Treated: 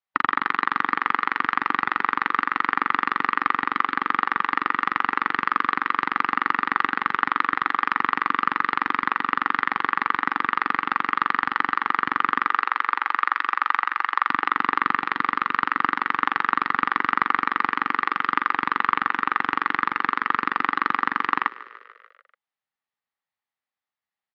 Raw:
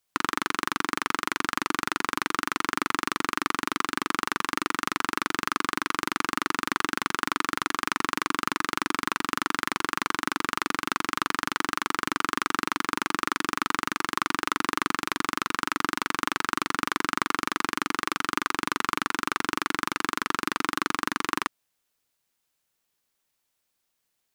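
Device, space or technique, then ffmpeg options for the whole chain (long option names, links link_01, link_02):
frequency-shifting delay pedal into a guitar cabinet: -filter_complex "[0:a]asettb=1/sr,asplit=3[link_01][link_02][link_03];[link_01]atrim=end=12.504[link_04];[link_02]atrim=start=12.5:end=14.28,asetpts=PTS-STARTPTS,afade=type=in:duration=0.004:curve=qsin,afade=type=out:start_time=1.776:duration=0.004:curve=qsin,highpass=510[link_05];[link_03]atrim=start=14.276[link_06];[link_04][link_05]acrossfade=duration=0.004:curve1=hsin:curve2=qsin[link_07];[link_07][link_06]acrossfade=duration=0.004:curve1=qsin:curve2=hsin,afftdn=noise_reduction=13:noise_floor=-35,asplit=7[link_08][link_09][link_10][link_11][link_12][link_13][link_14];[link_09]adelay=146,afreqshift=39,volume=-18.5dB[link_15];[link_10]adelay=292,afreqshift=78,volume=-22.4dB[link_16];[link_11]adelay=438,afreqshift=117,volume=-26.3dB[link_17];[link_12]adelay=584,afreqshift=156,volume=-30.1dB[link_18];[link_13]adelay=730,afreqshift=195,volume=-34dB[link_19];[link_14]adelay=876,afreqshift=234,volume=-37.9dB[link_20];[link_08][link_15][link_16][link_17][link_18][link_19][link_20]amix=inputs=7:normalize=0,highpass=79,equalizer=frequency=340:width_type=q:width=4:gain=-5,equalizer=frequency=810:width_type=q:width=4:gain=9,equalizer=frequency=1200:width_type=q:width=4:gain=7,equalizer=frequency=1900:width_type=q:width=4:gain=9,lowpass=frequency=4300:width=0.5412,lowpass=frequency=4300:width=1.3066"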